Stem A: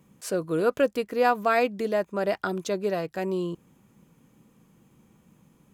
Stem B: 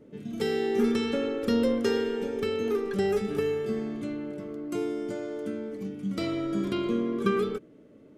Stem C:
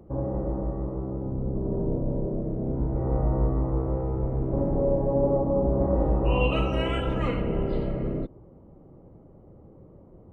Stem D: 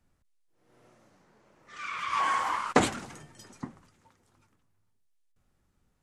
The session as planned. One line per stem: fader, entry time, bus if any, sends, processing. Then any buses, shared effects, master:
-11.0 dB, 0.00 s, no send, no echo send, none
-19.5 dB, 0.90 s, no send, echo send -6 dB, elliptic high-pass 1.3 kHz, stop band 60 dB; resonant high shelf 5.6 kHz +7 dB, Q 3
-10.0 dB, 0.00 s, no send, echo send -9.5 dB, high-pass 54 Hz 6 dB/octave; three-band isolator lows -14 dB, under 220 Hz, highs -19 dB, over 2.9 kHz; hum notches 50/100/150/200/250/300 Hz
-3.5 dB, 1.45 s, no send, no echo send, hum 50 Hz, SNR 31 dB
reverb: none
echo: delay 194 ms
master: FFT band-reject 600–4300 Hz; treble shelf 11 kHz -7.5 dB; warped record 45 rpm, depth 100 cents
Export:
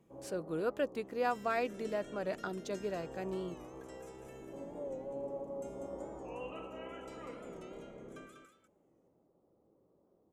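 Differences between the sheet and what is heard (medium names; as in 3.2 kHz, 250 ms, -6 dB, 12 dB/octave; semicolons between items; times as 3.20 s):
stem C -10.0 dB -> -17.0 dB; stem D: muted; master: missing FFT band-reject 600–4300 Hz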